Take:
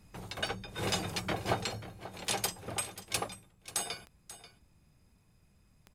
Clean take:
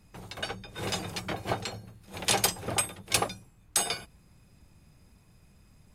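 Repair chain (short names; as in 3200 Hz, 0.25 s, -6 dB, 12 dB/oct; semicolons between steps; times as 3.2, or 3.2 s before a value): clip repair -20 dBFS; de-click; inverse comb 0.537 s -15 dB; gain 0 dB, from 1.99 s +7.5 dB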